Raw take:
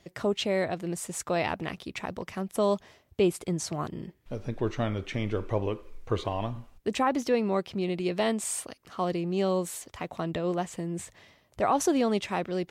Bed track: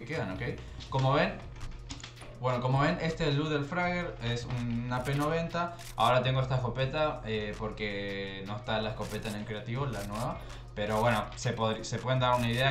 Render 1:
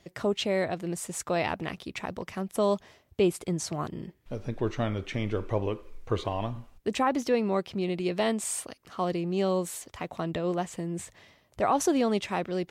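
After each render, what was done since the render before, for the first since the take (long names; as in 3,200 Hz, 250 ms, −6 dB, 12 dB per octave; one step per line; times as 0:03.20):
no processing that can be heard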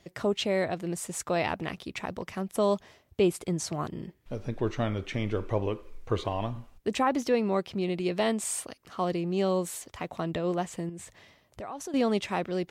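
0:10.89–0:11.94: downward compressor 3 to 1, threshold −40 dBFS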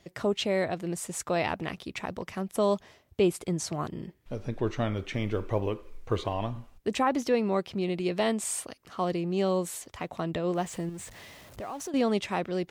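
0:04.95–0:06.34: floating-point word with a short mantissa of 6 bits
0:10.55–0:11.90: converter with a step at zero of −46 dBFS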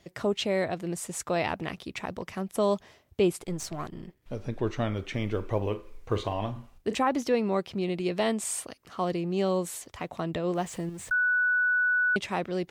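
0:03.41–0:04.23: gain on one half-wave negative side −7 dB
0:05.57–0:06.95: double-tracking delay 39 ms −11 dB
0:11.11–0:12.16: beep over 1,480 Hz −21.5 dBFS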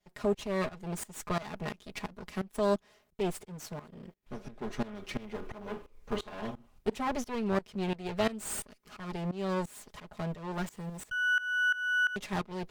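lower of the sound and its delayed copy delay 4.8 ms
shaped tremolo saw up 2.9 Hz, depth 90%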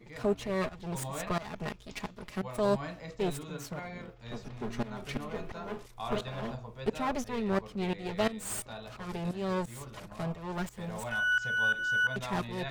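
mix in bed track −12.5 dB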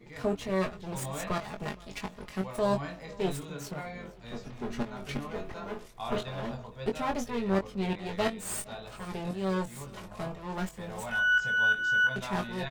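double-tracking delay 21 ms −5.5 dB
repeating echo 466 ms, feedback 46%, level −23 dB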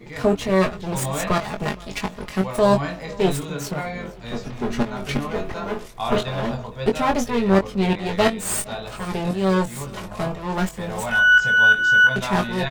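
level +11 dB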